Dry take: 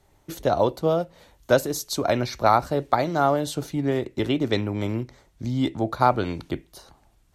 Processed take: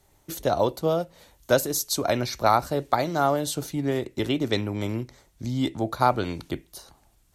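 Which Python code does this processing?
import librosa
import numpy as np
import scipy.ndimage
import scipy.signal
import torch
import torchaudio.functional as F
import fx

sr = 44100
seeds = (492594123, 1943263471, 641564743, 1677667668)

y = fx.high_shelf(x, sr, hz=5300.0, db=9.5)
y = y * librosa.db_to_amplitude(-2.0)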